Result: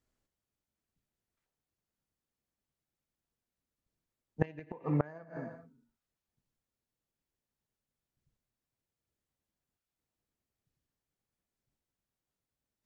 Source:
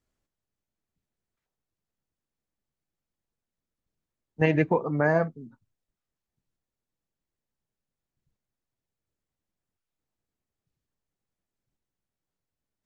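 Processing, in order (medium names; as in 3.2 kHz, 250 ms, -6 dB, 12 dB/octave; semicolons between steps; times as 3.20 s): gated-style reverb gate 440 ms falling, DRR 12 dB; Chebyshev shaper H 3 -24 dB, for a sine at -6 dBFS; inverted gate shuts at -13 dBFS, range -25 dB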